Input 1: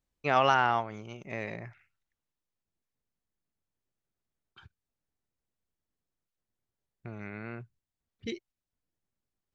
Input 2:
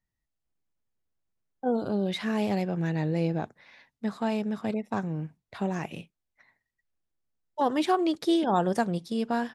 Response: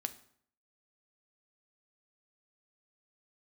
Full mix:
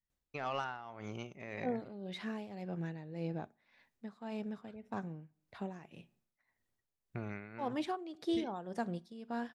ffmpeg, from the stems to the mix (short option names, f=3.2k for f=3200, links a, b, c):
-filter_complex "[0:a]asoftclip=type=tanh:threshold=-14.5dB,acompressor=threshold=-36dB:ratio=8,adelay=100,volume=-1dB,asplit=2[a][b];[b]volume=-4.5dB[c];[1:a]highshelf=f=7.9k:g=-8.5,volume=-12.5dB,asplit=3[d][e][f];[e]volume=-7dB[g];[f]apad=whole_len=425150[h];[a][h]sidechaincompress=threshold=-47dB:ratio=8:attack=16:release=390[i];[2:a]atrim=start_sample=2205[j];[c][g]amix=inputs=2:normalize=0[k];[k][j]afir=irnorm=-1:irlink=0[l];[i][d][l]amix=inputs=3:normalize=0,tremolo=f=1.8:d=0.72"